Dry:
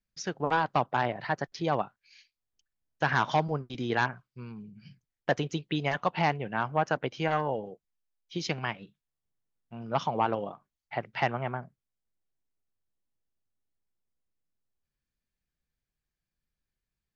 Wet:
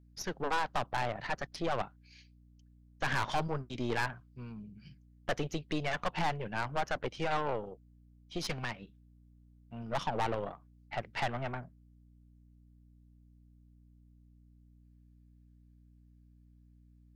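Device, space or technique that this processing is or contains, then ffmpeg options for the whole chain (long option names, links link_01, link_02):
valve amplifier with mains hum: -af "aeval=exprs='(tanh(28.2*val(0)+0.75)-tanh(0.75))/28.2':channel_layout=same,aeval=exprs='val(0)+0.000891*(sin(2*PI*60*n/s)+sin(2*PI*2*60*n/s)/2+sin(2*PI*3*60*n/s)/3+sin(2*PI*4*60*n/s)/4+sin(2*PI*5*60*n/s)/5)':channel_layout=same,volume=2dB"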